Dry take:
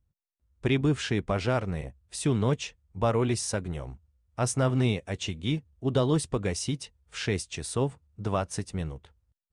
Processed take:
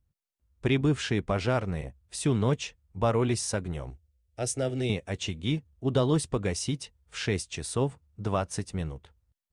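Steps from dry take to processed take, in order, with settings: 3.90–4.90 s: static phaser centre 440 Hz, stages 4

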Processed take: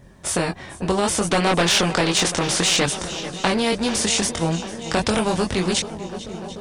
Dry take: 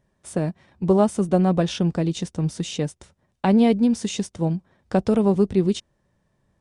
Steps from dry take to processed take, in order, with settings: vibrato 7.6 Hz 21 cents; chorus voices 2, 0.33 Hz, delay 23 ms, depth 1.4 ms; 1.29–2.86 s: overdrive pedal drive 16 dB, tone 3.4 kHz, clips at -10.5 dBFS; shuffle delay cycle 737 ms, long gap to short 1.5:1, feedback 52%, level -23 dB; loudness maximiser +13.5 dB; spectrum-flattening compressor 2:1; trim -1 dB

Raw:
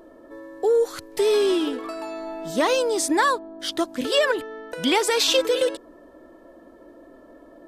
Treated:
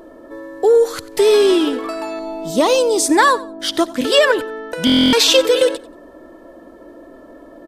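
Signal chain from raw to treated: 2.19–3.06 s: peaking EQ 1.7 kHz -13.5 dB 0.65 oct; feedback delay 91 ms, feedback 23%, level -19 dB; buffer glitch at 4.85 s, samples 1024, times 11; trim +7.5 dB

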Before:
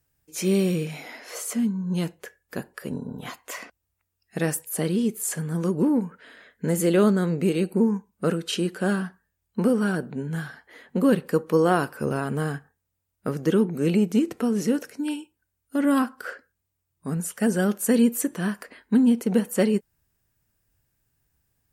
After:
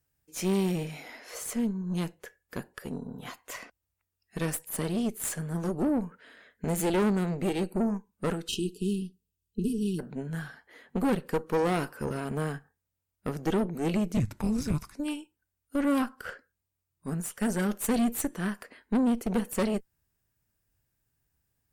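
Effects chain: 14.17–14.95 s: frequency shift -440 Hz; valve stage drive 21 dB, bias 0.8; 8.48–9.99 s: spectral selection erased 460–2500 Hz

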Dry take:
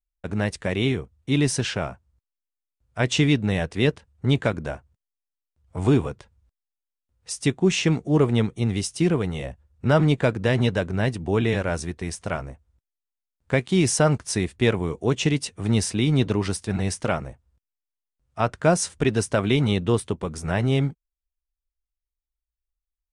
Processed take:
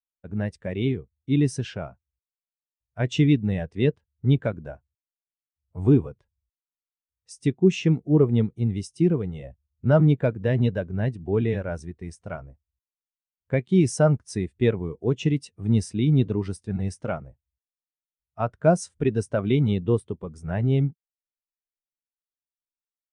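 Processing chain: spectral contrast expander 1.5:1

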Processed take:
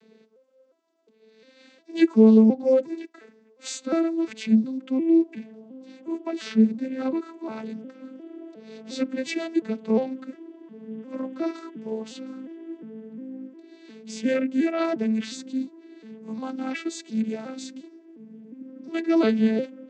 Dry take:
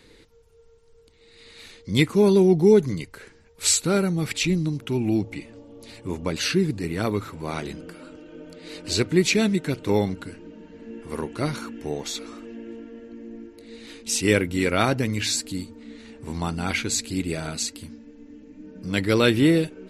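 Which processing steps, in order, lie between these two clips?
vocoder on a broken chord minor triad, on A3, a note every 356 ms

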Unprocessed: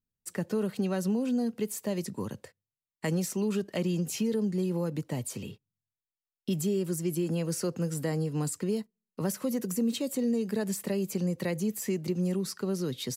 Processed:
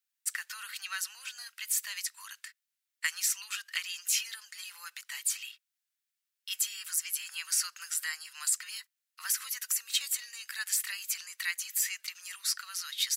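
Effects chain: steep high-pass 1.4 kHz 36 dB/octave; trim +8.5 dB

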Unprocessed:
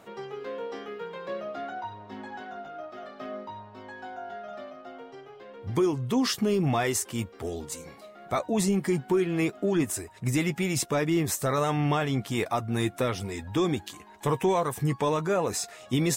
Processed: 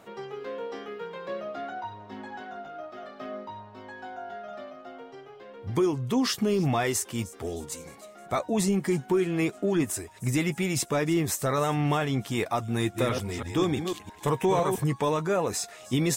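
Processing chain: 12.76–14.84 s: chunks repeated in reverse 167 ms, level -5.5 dB; feedback echo behind a high-pass 308 ms, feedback 55%, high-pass 4.9 kHz, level -17 dB

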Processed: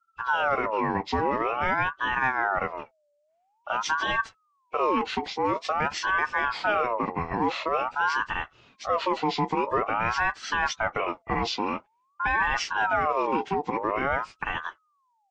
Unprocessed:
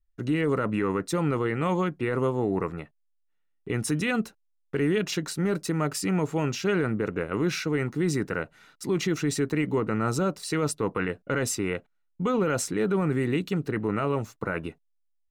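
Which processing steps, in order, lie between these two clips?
knee-point frequency compression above 1.2 kHz 1.5:1; ring modulator with a swept carrier 970 Hz, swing 40%, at 0.48 Hz; trim +3 dB

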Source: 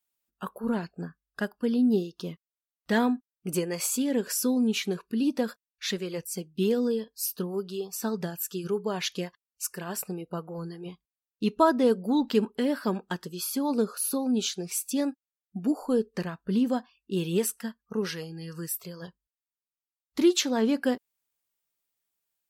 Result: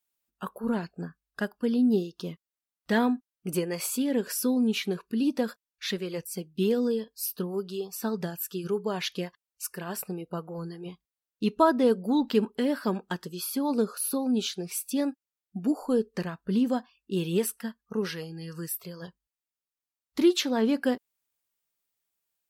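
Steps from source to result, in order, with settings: dynamic bell 6.9 kHz, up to -7 dB, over -51 dBFS, Q 2

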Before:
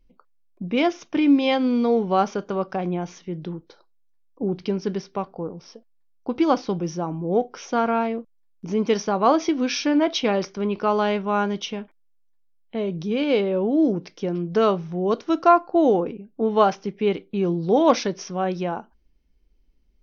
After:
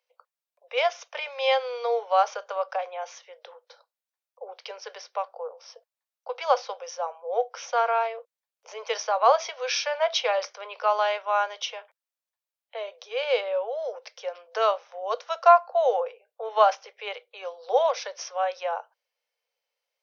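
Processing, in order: steep high-pass 480 Hz 96 dB/octave; 17.86–18.27 s: compression 3:1, threshold -25 dBFS, peak gain reduction 10 dB

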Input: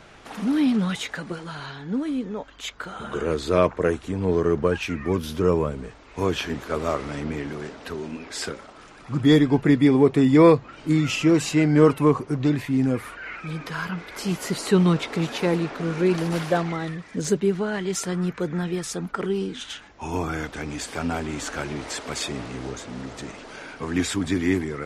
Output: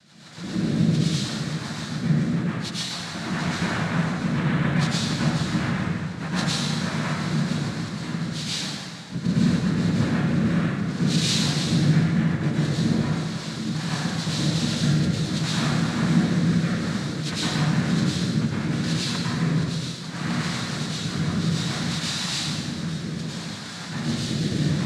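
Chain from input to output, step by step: noise-vocoded speech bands 3; compression 6:1, threshold -23 dBFS, peak gain reduction 14 dB; rotary cabinet horn 7 Hz, later 0.65 Hz, at 9.19 s; fifteen-band graphic EQ 160 Hz +12 dB, 400 Hz -9 dB, 4 kHz +12 dB; plate-style reverb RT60 2 s, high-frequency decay 0.75×, pre-delay 90 ms, DRR -9.5 dB; trim -7 dB

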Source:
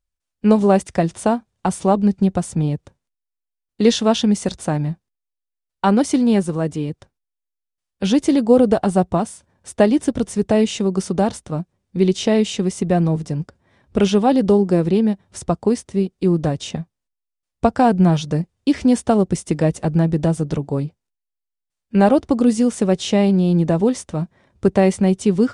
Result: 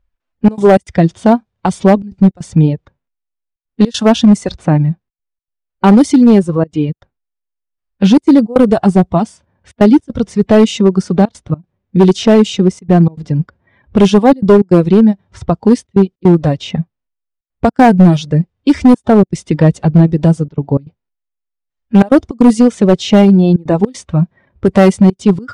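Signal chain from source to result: reverb removal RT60 1.4 s; level-controlled noise filter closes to 2.2 kHz, open at -10.5 dBFS; harmonic-percussive split harmonic +8 dB; in parallel at 0 dB: compression 6:1, threshold -21 dBFS, peak gain reduction 19 dB; on the sum: trance gate "xxxxx.xx.xxxxxxx" 156 bpm -24 dB; hard clipper -3.5 dBFS, distortion -15 dB; trim +2 dB

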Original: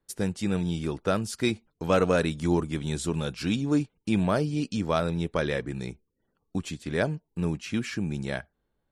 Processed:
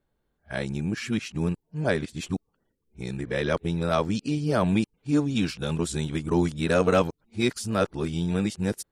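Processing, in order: reverse the whole clip; trim +1.5 dB

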